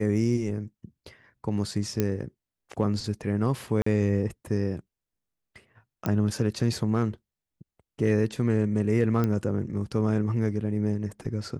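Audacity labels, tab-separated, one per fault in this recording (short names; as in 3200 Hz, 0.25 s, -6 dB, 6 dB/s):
2.000000	2.000000	pop -11 dBFS
3.820000	3.860000	gap 44 ms
6.060000	6.060000	pop -14 dBFS
9.240000	9.240000	pop -15 dBFS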